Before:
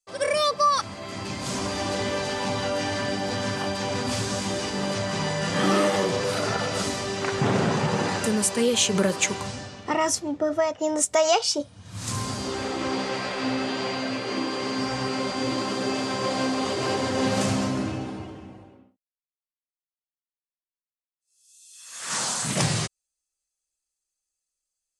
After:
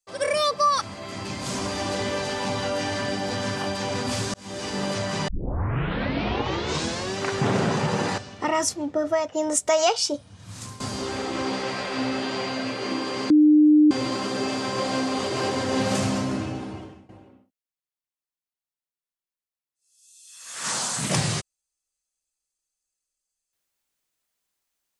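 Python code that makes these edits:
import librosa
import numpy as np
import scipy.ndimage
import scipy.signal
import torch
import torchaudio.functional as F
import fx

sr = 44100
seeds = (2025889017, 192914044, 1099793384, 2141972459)

y = fx.edit(x, sr, fx.fade_in_span(start_s=4.34, length_s=0.4),
    fx.tape_start(start_s=5.28, length_s=1.89),
    fx.cut(start_s=8.18, length_s=1.46),
    fx.fade_out_to(start_s=11.74, length_s=0.52, floor_db=-16.0),
    fx.bleep(start_s=14.76, length_s=0.61, hz=302.0, db=-11.5),
    fx.fade_out_to(start_s=18.29, length_s=0.26, floor_db=-16.5), tone=tone)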